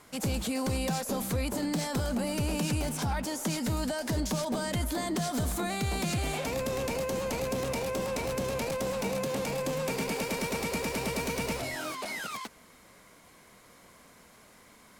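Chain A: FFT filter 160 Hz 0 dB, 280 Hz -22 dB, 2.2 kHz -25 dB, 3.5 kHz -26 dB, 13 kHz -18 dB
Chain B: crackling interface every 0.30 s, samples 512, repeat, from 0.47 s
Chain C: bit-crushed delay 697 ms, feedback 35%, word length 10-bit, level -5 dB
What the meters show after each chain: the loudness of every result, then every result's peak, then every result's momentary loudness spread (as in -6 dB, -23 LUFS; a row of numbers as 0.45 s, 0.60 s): -39.5 LUFS, -31.5 LUFS, -30.5 LUFS; -22.5 dBFS, -21.5 dBFS, -18.0 dBFS; 8 LU, 2 LU, 5 LU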